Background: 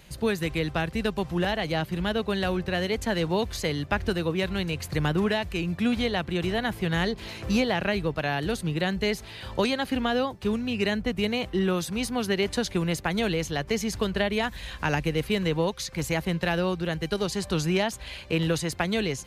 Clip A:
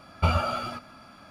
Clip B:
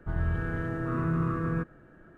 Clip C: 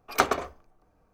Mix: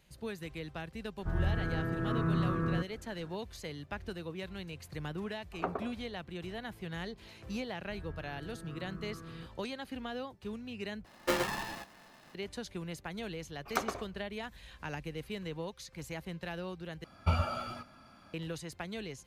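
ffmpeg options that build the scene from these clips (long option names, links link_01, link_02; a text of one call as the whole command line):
ffmpeg -i bed.wav -i cue0.wav -i cue1.wav -i cue2.wav -filter_complex "[2:a]asplit=2[link_01][link_02];[3:a]asplit=2[link_03][link_04];[1:a]asplit=2[link_05][link_06];[0:a]volume=-14.5dB[link_07];[link_03]lowpass=1000[link_08];[link_05]aeval=exprs='val(0)*sgn(sin(2*PI*440*n/s))':channel_layout=same[link_09];[link_06]lowshelf=frequency=140:gain=5[link_10];[link_07]asplit=3[link_11][link_12][link_13];[link_11]atrim=end=11.054[link_14];[link_09]atrim=end=1.3,asetpts=PTS-STARTPTS,volume=-8dB[link_15];[link_12]atrim=start=12.346:end=17.044[link_16];[link_10]atrim=end=1.3,asetpts=PTS-STARTPTS,volume=-8.5dB[link_17];[link_13]atrim=start=18.336[link_18];[link_01]atrim=end=2.17,asetpts=PTS-STARTPTS,volume=-2.5dB,afade=type=in:duration=0.004:curve=hsin,afade=type=out:start_time=2.166:duration=0.004:curve=hsin,adelay=1190[link_19];[link_08]atrim=end=1.13,asetpts=PTS-STARTPTS,volume=-9.5dB,afade=type=in:duration=0.004:curve=hsin,afade=type=out:start_time=1.126:duration=0.004:curve=hsin,adelay=5440[link_20];[link_02]atrim=end=2.17,asetpts=PTS-STARTPTS,volume=-17.5dB,afade=type=in:duration=0.004:curve=hsin,afade=type=out:start_time=2.166:duration=0.004:curve=hsin,adelay=7830[link_21];[link_04]atrim=end=1.13,asetpts=PTS-STARTPTS,volume=-10.5dB,afade=type=in:duration=0.004:curve=hsin,afade=type=out:start_time=1.126:duration=0.004:curve=hsin,adelay=13570[link_22];[link_14][link_15]acrossfade=duration=0.004:curve1=hsin:curve2=hsin[link_23];[link_23][link_16]acrossfade=duration=0.004:curve1=hsin:curve2=hsin[link_24];[link_24][link_17]acrossfade=duration=0.004:curve1=hsin:curve2=hsin[link_25];[link_25][link_18]acrossfade=duration=0.004:curve1=hsin:curve2=hsin[link_26];[link_26][link_19][link_20][link_21][link_22]amix=inputs=5:normalize=0" out.wav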